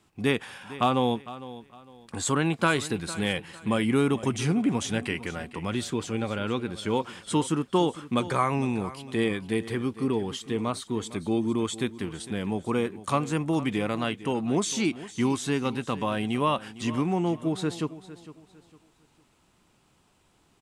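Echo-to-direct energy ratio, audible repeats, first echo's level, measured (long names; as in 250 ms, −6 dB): −15.5 dB, 2, −16.0 dB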